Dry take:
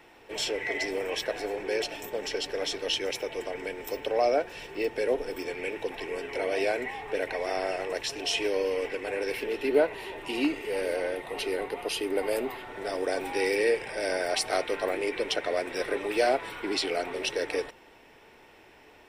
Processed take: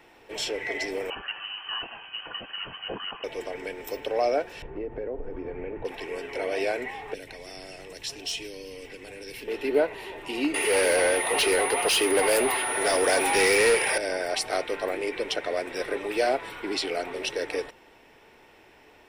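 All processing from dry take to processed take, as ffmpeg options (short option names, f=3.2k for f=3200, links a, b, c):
-filter_complex "[0:a]asettb=1/sr,asplit=3[a][b][c];[a]atrim=end=1.104[d];[b]atrim=start=1.1:end=3.24,asetpts=PTS-STARTPTS,afade=t=in:d=0.004:c=qsin,afade=t=out:st=2.136:d=0.004:c=qsin,highpass=f=640:p=1,lowpass=f=2.9k:t=q:w=0.5098,lowpass=f=2.9k:t=q:w=0.6013,lowpass=f=2.9k:t=q:w=0.9,lowpass=f=2.9k:t=q:w=2.563,afreqshift=-3400[e];[c]atrim=start=3.236[f];[d][e]acrossfade=d=0.004:c1=hsin:c2=qsin[g];[g][f]acrossfade=d=0.004:c1=qsin:c2=hsin,asettb=1/sr,asplit=3[h][i][j];[h]atrim=end=4.624[k];[i]atrim=start=4.62:end=5.85,asetpts=PTS-STARTPTS,afade=t=in:d=0.004:c=qsin,afade=t=out:st=1.226:d=0.004:c=qsin,lowpass=1.4k,aemphasis=mode=reproduction:type=bsi,acompressor=threshold=-30dB:ratio=4:attack=3.2:release=140:knee=1:detection=peak[l];[j]atrim=start=5.846[m];[k][l]acrossfade=d=0.004:c1=hsin:c2=qsin[n];[n][m]acrossfade=d=0.004:c1=qsin:c2=hsin,asettb=1/sr,asplit=3[o][p][q];[o]atrim=end=7.144[r];[p]atrim=start=7.14:end=9.48,asetpts=PTS-STARTPTS,afade=t=in:d=0.004:c=qsin,afade=t=out:st=2.336:d=0.004:c=qsin,acrossover=split=250|3000[s][t][u];[t]acompressor=threshold=-43dB:ratio=10:attack=3.2:release=140:knee=2.83:detection=peak[v];[s][v][u]amix=inputs=3:normalize=0,asoftclip=type=hard:threshold=-24dB[w];[q]atrim=start=9.476[x];[r][w]acrossfade=d=0.004:c1=hsin:c2=qsin[y];[y][x]acrossfade=d=0.004:c1=qsin:c2=hsin,asettb=1/sr,asplit=3[z][aa][ab];[z]atrim=end=10.544[ac];[aa]atrim=start=10.54:end=13.98,asetpts=PTS-STARTPTS,afade=t=in:d=0.004:c=qsin,afade=t=out:st=3.436:d=0.004:c=qsin,highshelf=f=7.4k:g=8,asplit=2[ad][ae];[ae]highpass=f=720:p=1,volume=21dB,asoftclip=type=tanh:threshold=-13.5dB[af];[ad][af]amix=inputs=2:normalize=0,lowpass=f=6k:p=1,volume=-6dB,aeval=exprs='val(0)+0.0282*sin(2*PI*9900*n/s)':c=same[ag];[ab]atrim=start=13.976[ah];[ac][ag]acrossfade=d=0.004:c1=hsin:c2=qsin[ai];[ai][ah]acrossfade=d=0.004:c1=qsin:c2=hsin"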